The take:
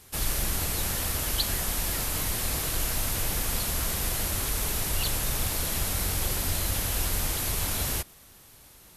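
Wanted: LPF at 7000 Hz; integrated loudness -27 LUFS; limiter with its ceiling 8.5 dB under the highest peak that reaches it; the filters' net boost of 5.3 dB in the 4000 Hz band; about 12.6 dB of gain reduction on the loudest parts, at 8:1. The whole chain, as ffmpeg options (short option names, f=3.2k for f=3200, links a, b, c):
-af "lowpass=7k,equalizer=f=4k:t=o:g=7,acompressor=threshold=-32dB:ratio=8,volume=12dB,alimiter=limit=-18dB:level=0:latency=1"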